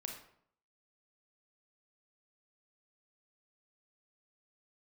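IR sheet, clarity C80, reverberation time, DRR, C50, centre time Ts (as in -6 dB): 9.0 dB, 0.65 s, 2.0 dB, 5.0 dB, 28 ms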